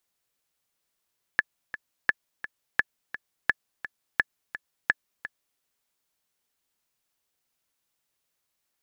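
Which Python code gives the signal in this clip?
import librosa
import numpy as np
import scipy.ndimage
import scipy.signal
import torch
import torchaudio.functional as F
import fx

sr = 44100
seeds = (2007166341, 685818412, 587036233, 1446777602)

y = fx.click_track(sr, bpm=171, beats=2, bars=6, hz=1720.0, accent_db=14.0, level_db=-6.5)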